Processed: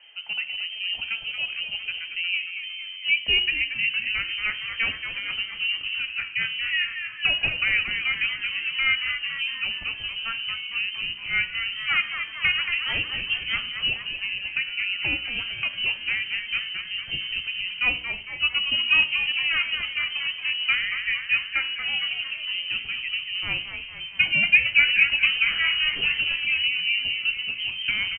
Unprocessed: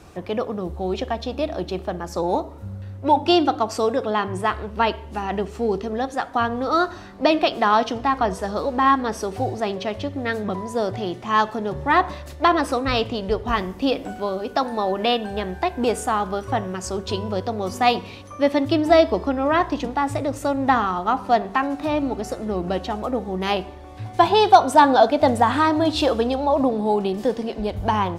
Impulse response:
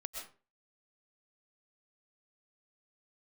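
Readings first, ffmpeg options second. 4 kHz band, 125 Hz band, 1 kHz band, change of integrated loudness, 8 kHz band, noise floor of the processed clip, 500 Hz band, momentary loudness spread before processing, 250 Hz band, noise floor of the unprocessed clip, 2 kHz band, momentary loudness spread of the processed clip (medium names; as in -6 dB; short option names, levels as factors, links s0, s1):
+8.0 dB, -15.0 dB, -23.0 dB, -2.0 dB, under -40 dB, -38 dBFS, -30.0 dB, 10 LU, -25.5 dB, -38 dBFS, +8.0 dB, 9 LU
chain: -filter_complex "[0:a]lowpass=f=2700:t=q:w=0.5098,lowpass=f=2700:t=q:w=0.6013,lowpass=f=2700:t=q:w=0.9,lowpass=f=2700:t=q:w=2.563,afreqshift=-3200,asubboost=boost=5.5:cutoff=230,bandreject=f=61.07:t=h:w=4,bandreject=f=122.14:t=h:w=4,bandreject=f=183.21:t=h:w=4,bandreject=f=244.28:t=h:w=4,bandreject=f=305.35:t=h:w=4,bandreject=f=366.42:t=h:w=4,bandreject=f=427.49:t=h:w=4,bandreject=f=488.56:t=h:w=4,bandreject=f=549.63:t=h:w=4,bandreject=f=610.7:t=h:w=4,bandreject=f=671.77:t=h:w=4,bandreject=f=732.84:t=h:w=4,bandreject=f=793.91:t=h:w=4,bandreject=f=854.98:t=h:w=4,bandreject=f=916.05:t=h:w=4,bandreject=f=977.12:t=h:w=4,bandreject=f=1038.19:t=h:w=4,bandreject=f=1099.26:t=h:w=4,bandreject=f=1160.33:t=h:w=4,bandreject=f=1221.4:t=h:w=4,bandreject=f=1282.47:t=h:w=4,bandreject=f=1343.54:t=h:w=4,bandreject=f=1404.61:t=h:w=4,bandreject=f=1465.68:t=h:w=4,bandreject=f=1526.75:t=h:w=4,bandreject=f=1587.82:t=h:w=4,bandreject=f=1648.89:t=h:w=4,bandreject=f=1709.96:t=h:w=4,bandreject=f=1771.03:t=h:w=4,bandreject=f=1832.1:t=h:w=4,bandreject=f=1893.17:t=h:w=4,asplit=2[s0][s1];[s1]asplit=7[s2][s3][s4][s5][s6][s7][s8];[s2]adelay=229,afreqshift=-90,volume=0.398[s9];[s3]adelay=458,afreqshift=-180,volume=0.219[s10];[s4]adelay=687,afreqshift=-270,volume=0.12[s11];[s5]adelay=916,afreqshift=-360,volume=0.0661[s12];[s6]adelay=1145,afreqshift=-450,volume=0.0363[s13];[s7]adelay=1374,afreqshift=-540,volume=0.02[s14];[s8]adelay=1603,afreqshift=-630,volume=0.011[s15];[s9][s10][s11][s12][s13][s14][s15]amix=inputs=7:normalize=0[s16];[s0][s16]amix=inputs=2:normalize=0,crystalizer=i=1.5:c=0,volume=0.447"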